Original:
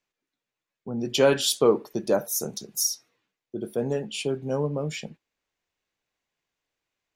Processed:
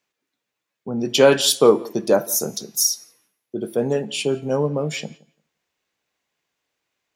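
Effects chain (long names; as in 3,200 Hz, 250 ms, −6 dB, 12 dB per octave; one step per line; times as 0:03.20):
high-pass filter 130 Hz 6 dB per octave
hum removal 337.3 Hz, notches 37
on a send: feedback echo with a low-pass in the loop 172 ms, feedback 17%, low-pass 3,000 Hz, level −23 dB
on the sum: level +6.5 dB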